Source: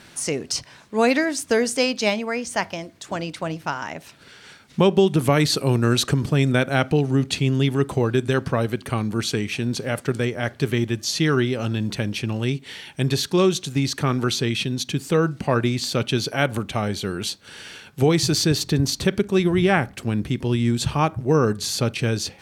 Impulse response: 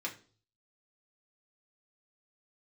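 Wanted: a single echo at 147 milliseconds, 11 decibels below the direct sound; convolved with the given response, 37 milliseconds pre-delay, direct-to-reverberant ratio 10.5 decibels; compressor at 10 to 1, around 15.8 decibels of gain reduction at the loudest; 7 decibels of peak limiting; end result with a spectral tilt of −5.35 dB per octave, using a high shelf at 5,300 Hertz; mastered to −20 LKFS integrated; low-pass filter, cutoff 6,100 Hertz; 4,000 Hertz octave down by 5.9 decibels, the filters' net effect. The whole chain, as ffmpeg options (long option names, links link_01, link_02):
-filter_complex "[0:a]lowpass=6100,equalizer=frequency=4000:width_type=o:gain=-4,highshelf=frequency=5300:gain=-5.5,acompressor=threshold=-29dB:ratio=10,alimiter=limit=-23.5dB:level=0:latency=1,aecho=1:1:147:0.282,asplit=2[link_01][link_02];[1:a]atrim=start_sample=2205,adelay=37[link_03];[link_02][link_03]afir=irnorm=-1:irlink=0,volume=-12.5dB[link_04];[link_01][link_04]amix=inputs=2:normalize=0,volume=15dB"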